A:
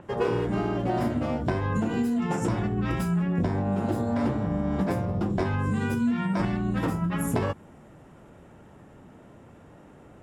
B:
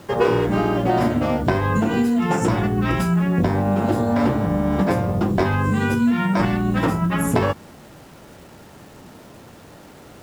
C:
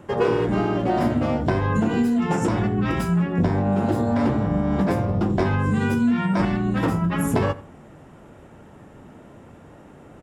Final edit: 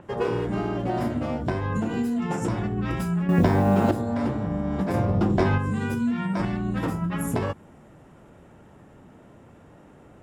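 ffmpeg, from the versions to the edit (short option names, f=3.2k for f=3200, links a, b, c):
-filter_complex "[0:a]asplit=3[a][b][c];[a]atrim=end=3.292[d];[1:a]atrim=start=3.288:end=3.912[e];[b]atrim=start=3.908:end=4.942[f];[2:a]atrim=start=4.938:end=5.582[g];[c]atrim=start=5.578[h];[d][e]acrossfade=d=0.004:c1=hsin:c2=hsin[i];[i][f]acrossfade=d=0.004:c1=hsin:c2=hsin[j];[j][g]acrossfade=d=0.004:c1=hsin:c2=hsin[k];[k][h]acrossfade=d=0.004:c1=hsin:c2=hsin"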